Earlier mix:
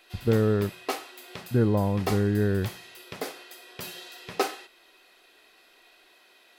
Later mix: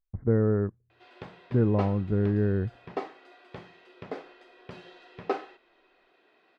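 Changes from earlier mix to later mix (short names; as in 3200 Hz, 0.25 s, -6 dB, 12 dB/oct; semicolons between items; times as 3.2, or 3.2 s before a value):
background: entry +0.90 s; master: add tape spacing loss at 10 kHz 38 dB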